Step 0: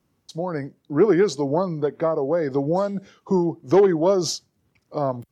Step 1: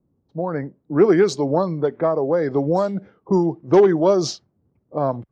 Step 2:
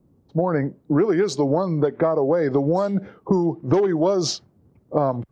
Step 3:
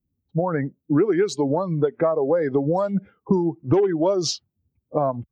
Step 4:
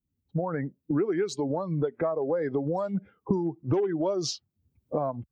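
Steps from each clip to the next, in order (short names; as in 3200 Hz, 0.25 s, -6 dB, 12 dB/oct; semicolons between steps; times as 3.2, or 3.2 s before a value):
low-pass opened by the level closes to 510 Hz, open at -15 dBFS; gain +2.5 dB
compressor 10:1, threshold -25 dBFS, peak gain reduction 16.5 dB; gain +9 dB
per-bin expansion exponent 1.5; gain +1.5 dB
recorder AGC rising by 22 dB/s; gain -7.5 dB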